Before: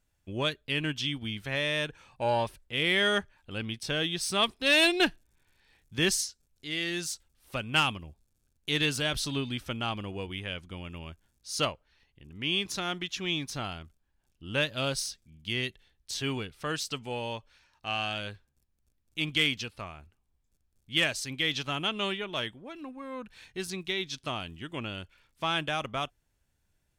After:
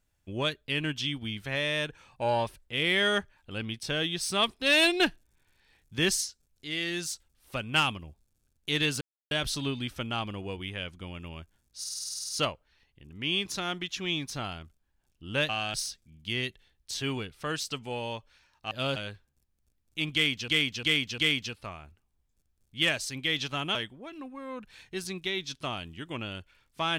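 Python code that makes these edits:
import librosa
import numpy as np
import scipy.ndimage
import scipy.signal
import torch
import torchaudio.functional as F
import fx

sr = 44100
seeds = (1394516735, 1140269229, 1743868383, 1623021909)

y = fx.edit(x, sr, fx.insert_silence(at_s=9.01, length_s=0.3),
    fx.stutter(start_s=11.49, slice_s=0.05, count=11),
    fx.swap(start_s=14.69, length_s=0.25, other_s=17.91, other_length_s=0.25),
    fx.repeat(start_s=19.33, length_s=0.35, count=4),
    fx.cut(start_s=21.9, length_s=0.48), tone=tone)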